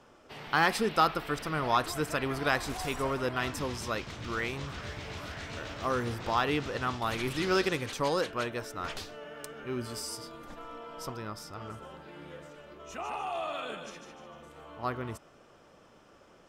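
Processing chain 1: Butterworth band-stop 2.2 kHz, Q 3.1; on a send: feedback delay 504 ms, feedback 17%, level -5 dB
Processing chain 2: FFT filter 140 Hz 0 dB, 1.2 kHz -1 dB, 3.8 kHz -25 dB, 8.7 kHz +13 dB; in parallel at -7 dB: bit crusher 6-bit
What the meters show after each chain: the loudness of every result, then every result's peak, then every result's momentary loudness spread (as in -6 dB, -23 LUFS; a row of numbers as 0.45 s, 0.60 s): -32.0 LUFS, -30.0 LUFS; -11.0 dBFS, -8.5 dBFS; 17 LU, 19 LU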